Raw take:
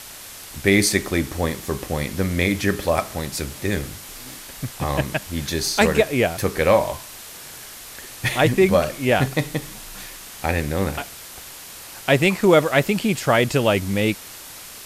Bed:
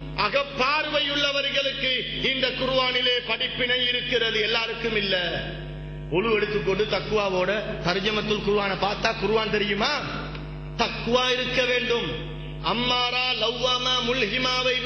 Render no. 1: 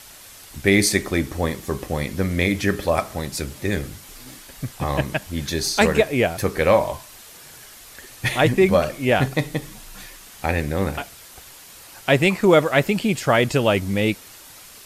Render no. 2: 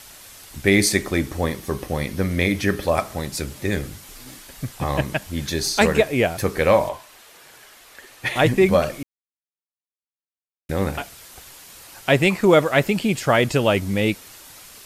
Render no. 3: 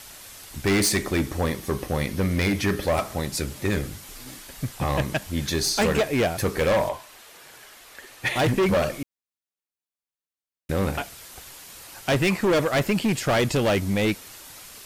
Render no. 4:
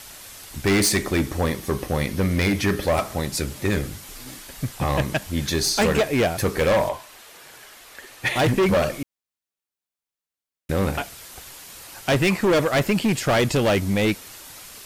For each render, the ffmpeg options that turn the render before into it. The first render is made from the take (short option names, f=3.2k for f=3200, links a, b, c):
-af "afftdn=nr=6:nf=-39"
-filter_complex "[0:a]asettb=1/sr,asplit=3[a][b][c];[a]atrim=end=1.444[d];[b]atrim=start=1.44:end=2.84,asetpts=PTS-STARTPTS,afade=t=in:d=0.004:c=qsin,afade=t=out:st=1.396:d=0.004:c=qsin,bandreject=f=7.3k:w=9.7[e];[c]atrim=start=2.836[f];[d][e]acrossfade=d=0.004:c1=hsin:c2=qsin[g];[g][f]acrossfade=d=0.004:c1=qsin:c2=hsin,asettb=1/sr,asplit=3[h][i][j];[h]atrim=end=6.894[k];[i]atrim=start=6.89:end=8.36,asetpts=PTS-STARTPTS,afade=t=in:d=0.004:c=qsin,afade=t=out:st=1.466:d=0.004:c=qsin,bass=f=250:g=-11,treble=f=4k:g=-7[l];[j]atrim=start=8.356[m];[k][l]acrossfade=d=0.004:c1=hsin:c2=qsin[n];[n][m]acrossfade=d=0.004:c1=qsin:c2=hsin,asplit=3[o][p][q];[o]atrim=end=9.03,asetpts=PTS-STARTPTS,afade=t=out:st=9.026:d=0.004:c=hsin[r];[p]atrim=start=9.03:end=10.69,asetpts=PTS-STARTPTS,volume=0[s];[q]atrim=start=10.69,asetpts=PTS-STARTPTS,afade=t=in:d=0.004:c=hsin[t];[r][s][t]concat=n=3:v=0:a=1"
-af "asoftclip=type=hard:threshold=-17.5dB"
-af "volume=2dB"